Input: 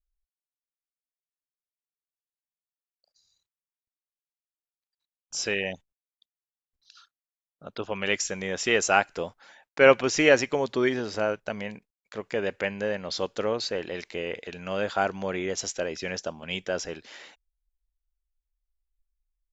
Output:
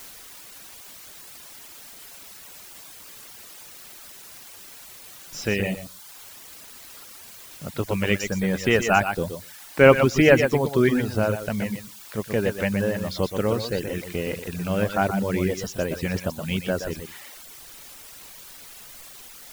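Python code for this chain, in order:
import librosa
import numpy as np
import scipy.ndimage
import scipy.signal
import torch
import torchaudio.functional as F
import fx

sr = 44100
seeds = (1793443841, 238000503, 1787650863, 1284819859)

p1 = fx.bass_treble(x, sr, bass_db=14, treble_db=-9)
p2 = fx.echo_feedback(p1, sr, ms=121, feedback_pct=16, wet_db=-5)
p3 = fx.quant_dither(p2, sr, seeds[0], bits=6, dither='triangular')
p4 = p2 + F.gain(torch.from_numpy(p3), -4.0).numpy()
p5 = fx.dereverb_blind(p4, sr, rt60_s=0.66)
y = F.gain(torch.from_numpy(p5), -2.0).numpy()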